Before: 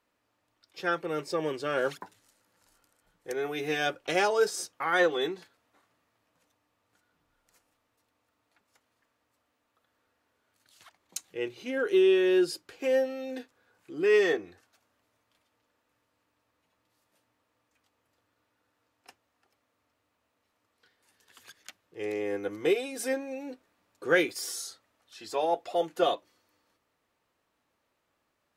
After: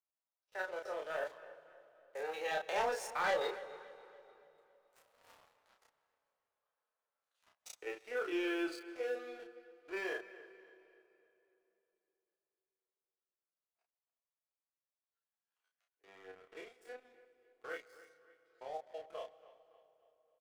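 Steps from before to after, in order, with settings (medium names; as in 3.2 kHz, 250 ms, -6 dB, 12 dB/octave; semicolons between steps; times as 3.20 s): spectrogram pixelated in time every 50 ms; Doppler pass-by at 7.44 s, 27 m/s, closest 5.2 m; high-pass 540 Hz 24 dB/octave; treble shelf 2.2 kHz -11 dB; waveshaping leveller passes 3; tempo 1.4×; doubling 32 ms -3.5 dB; feedback echo behind a low-pass 283 ms, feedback 43%, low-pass 3.4 kHz, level -17 dB; reverberation RT60 3.3 s, pre-delay 118 ms, DRR 18 dB; trim +14 dB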